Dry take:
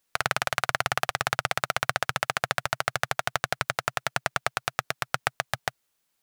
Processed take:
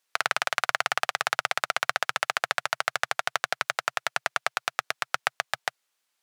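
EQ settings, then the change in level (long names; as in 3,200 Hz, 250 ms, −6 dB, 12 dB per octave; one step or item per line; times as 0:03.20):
meter weighting curve A
0.0 dB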